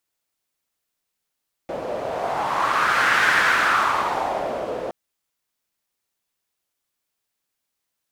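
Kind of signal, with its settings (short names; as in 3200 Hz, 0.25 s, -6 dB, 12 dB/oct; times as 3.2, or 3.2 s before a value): wind-like swept noise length 3.22 s, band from 540 Hz, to 1600 Hz, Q 3.4, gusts 1, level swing 11 dB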